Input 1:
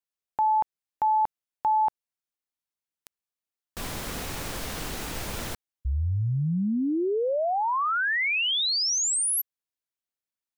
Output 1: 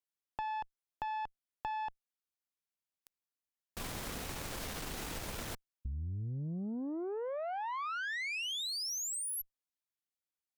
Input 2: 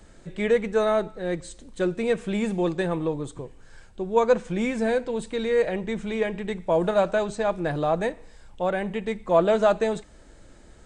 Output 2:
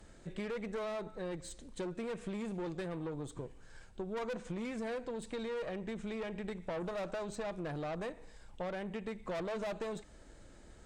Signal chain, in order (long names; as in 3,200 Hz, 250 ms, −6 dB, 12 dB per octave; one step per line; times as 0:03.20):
tube saturation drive 25 dB, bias 0.5
downward compressor, threshold −33 dBFS
level −3.5 dB